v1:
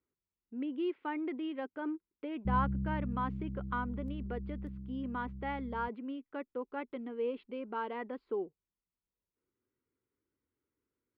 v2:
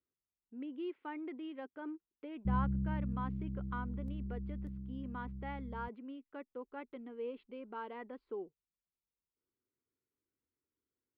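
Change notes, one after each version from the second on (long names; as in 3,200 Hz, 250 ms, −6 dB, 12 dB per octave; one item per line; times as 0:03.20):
speech −6.5 dB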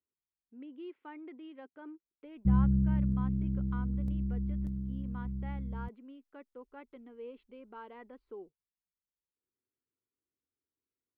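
speech −4.0 dB
background +8.0 dB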